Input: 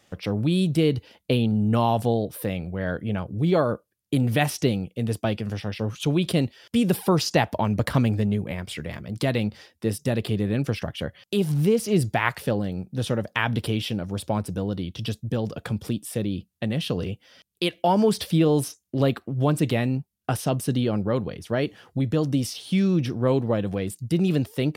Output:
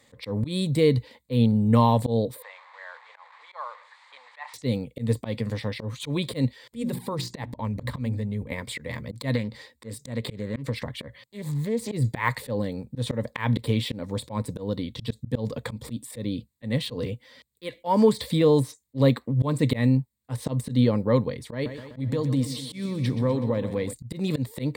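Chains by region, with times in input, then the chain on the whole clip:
2.42–4.54 delta modulation 64 kbps, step -33 dBFS + steep high-pass 820 Hz + tape spacing loss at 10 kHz 40 dB
6.75–8.52 low shelf 150 Hz +8 dB + notches 60/120/180/240/300/360 Hz + level quantiser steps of 14 dB
9.35–11.92 compressor 4:1, threshold -26 dBFS + Doppler distortion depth 0.31 ms
21.53–23.93 compressor 5:1, threshold -23 dBFS + feedback echo 0.125 s, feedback 58%, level -12 dB
whole clip: de-esser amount 70%; ripple EQ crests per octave 1, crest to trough 11 dB; auto swell 0.123 s

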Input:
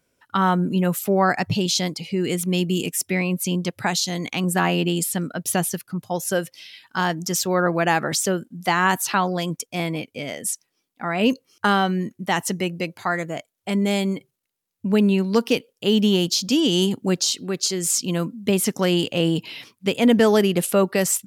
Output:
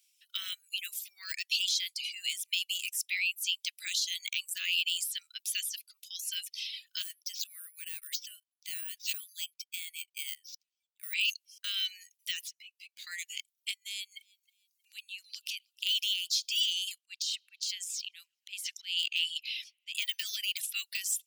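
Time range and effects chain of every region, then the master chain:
7.02–11.13 level quantiser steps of 16 dB + HPF 640 Hz + careless resampling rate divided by 4×, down filtered, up hold
12.41–13.07 median filter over 5 samples + compressor 16:1, threshold -36 dBFS + ensemble effect
13.71–15.87 compressor 12:1, threshold -28 dBFS + feedback echo 0.315 s, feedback 23%, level -22.5 dB
16.98–19.95 LPF 3200 Hz 6 dB/oct + auto swell 0.231 s + band-limited delay 0.131 s, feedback 61%, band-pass 880 Hz, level -21 dB
whole clip: de-esser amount 80%; steep high-pass 2600 Hz 36 dB/oct; reverb removal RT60 0.69 s; gain +5.5 dB

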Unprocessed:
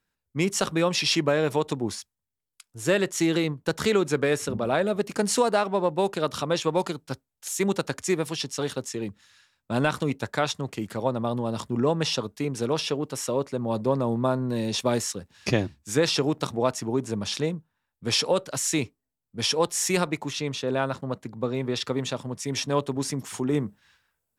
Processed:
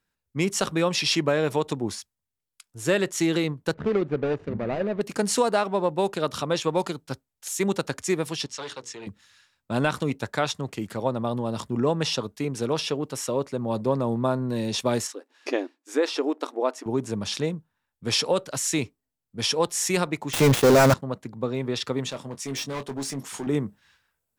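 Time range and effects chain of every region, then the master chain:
3.74–5.01 median filter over 41 samples + LPF 3000 Hz
8.46–9.07 three-band isolator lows -12 dB, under 530 Hz, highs -22 dB, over 7900 Hz + notches 60/120/180/240/300/360/420/480 Hz + core saturation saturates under 970 Hz
15.07–16.86 brick-wall FIR high-pass 250 Hz + high shelf 2800 Hz -10 dB
20.33–20.94 switching dead time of 0.11 ms + sample leveller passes 5
22.1–23.47 HPF 180 Hz 6 dB/oct + hard clip -27.5 dBFS + doubler 22 ms -10 dB
whole clip: dry

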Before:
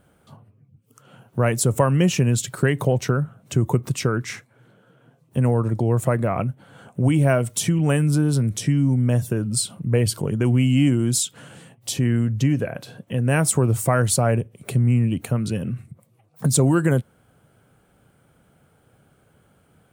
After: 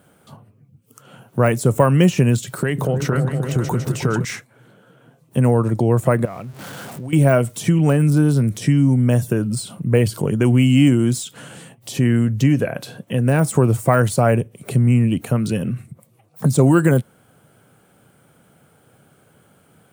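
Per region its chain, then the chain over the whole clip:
2.5–4.25 compressor 5:1, threshold -19 dBFS + repeats that get brighter 0.155 s, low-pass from 200 Hz, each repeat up 2 oct, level -3 dB
6.25–7.13 zero-crossing step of -35 dBFS + compressor 3:1, threshold -37 dBFS
whole clip: HPF 110 Hz; de-esser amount 75%; high shelf 6100 Hz +4.5 dB; gain +5 dB

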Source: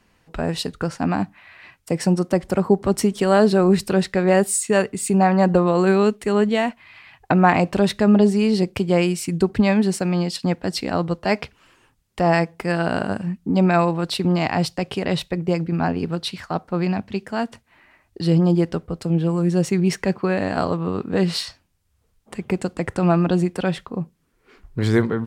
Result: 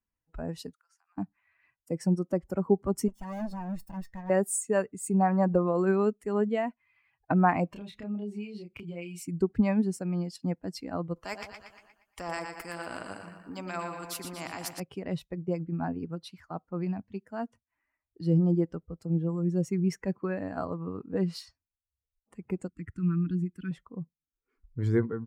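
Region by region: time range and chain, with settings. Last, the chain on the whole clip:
0.73–1.18 HPF 980 Hz 24 dB/oct + compressor 8:1, threshold -45 dBFS + high shelf 5200 Hz +8 dB
3.08–4.3 minimum comb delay 1.1 ms + hard clip -15 dBFS + resonator 230 Hz, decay 0.2 s, mix 50%
7.73–9.23 band shelf 3000 Hz +8.5 dB 1.1 oct + compressor, threshold -25 dBFS + doubler 29 ms -2.5 dB
11.16–14.8 bell 64 Hz -8.5 dB 2.5 oct + split-band echo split 890 Hz, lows 86 ms, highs 0.118 s, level -7 dB + spectral compressor 2:1
22.68–23.71 Butterworth band-stop 680 Hz, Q 0.55 + bell 7600 Hz -5 dB 1.7 oct
whole clip: per-bin expansion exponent 1.5; bell 3500 Hz -13 dB 1.2 oct; gain -5.5 dB

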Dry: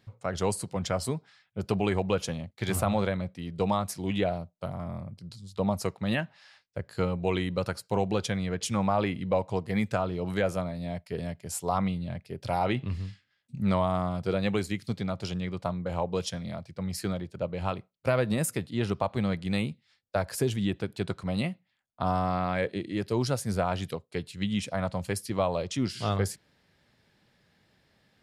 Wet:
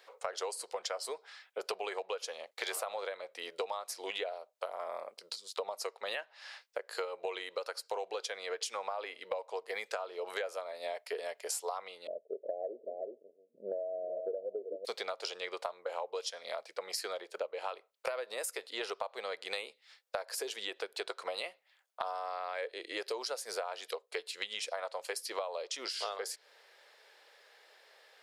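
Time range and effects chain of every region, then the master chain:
12.07–14.85 steep low-pass 660 Hz 96 dB/oct + echo 0.378 s -12.5 dB
whole clip: elliptic high-pass 450 Hz, stop band 80 dB; dynamic EQ 4800 Hz, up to +5 dB, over -54 dBFS, Q 1.8; compressor 12:1, threshold -43 dBFS; gain +8.5 dB

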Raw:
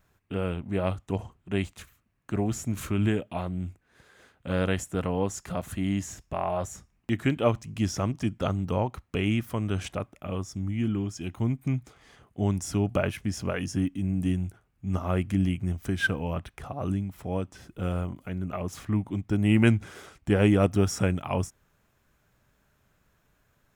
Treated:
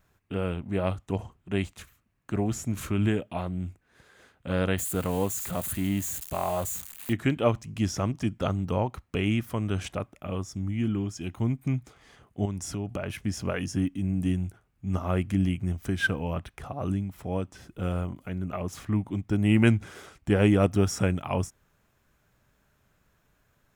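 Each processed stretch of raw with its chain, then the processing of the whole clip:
4.78–7.13 switching spikes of -28 dBFS + bell 5400 Hz -12.5 dB 0.31 oct
12.45–13.1 high shelf 11000 Hz -3.5 dB + compressor 4:1, threshold -29 dBFS
whole clip: dry

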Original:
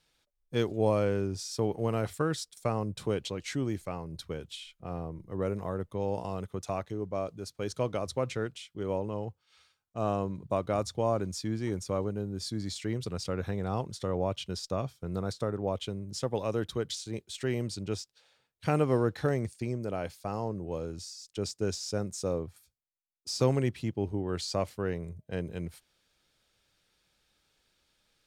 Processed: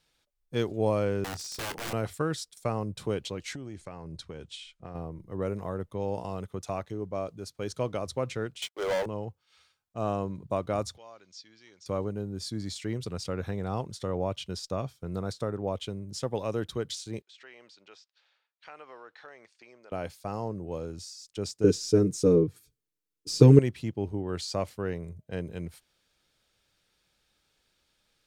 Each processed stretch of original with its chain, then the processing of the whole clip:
1.24–1.93 wrapped overs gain 30 dB + doubler 25 ms -14 dB
3.53–4.95 LPF 9200 Hz 24 dB/oct + compressor 12:1, threshold -35 dBFS
8.62–9.06 HPF 530 Hz 24 dB/oct + sample leveller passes 5 + upward expander, over -39 dBFS
10.97–11.86 inverse Chebyshev low-pass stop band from 11000 Hz, stop band 50 dB + differentiator + upward compressor, threshold -53 dBFS
17.22–19.92 HPF 990 Hz + compressor 2:1, threshold -49 dBFS + air absorption 170 m
21.64–23.59 resonant low shelf 520 Hz +8 dB, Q 3 + comb 6.6 ms, depth 80%
whole clip: dry

